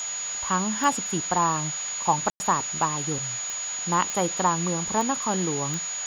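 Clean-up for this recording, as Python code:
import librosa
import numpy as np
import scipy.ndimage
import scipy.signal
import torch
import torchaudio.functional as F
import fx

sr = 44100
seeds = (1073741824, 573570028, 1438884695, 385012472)

y = fx.fix_declick_ar(x, sr, threshold=10.0)
y = fx.notch(y, sr, hz=6800.0, q=30.0)
y = fx.fix_ambience(y, sr, seeds[0], print_start_s=3.36, print_end_s=3.86, start_s=2.3, end_s=2.4)
y = fx.noise_reduce(y, sr, print_start_s=3.36, print_end_s=3.86, reduce_db=30.0)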